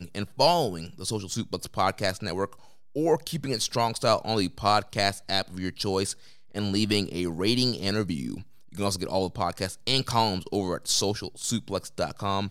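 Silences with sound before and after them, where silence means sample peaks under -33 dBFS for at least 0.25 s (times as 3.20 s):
2.53–2.96 s
6.13–6.56 s
8.41–8.75 s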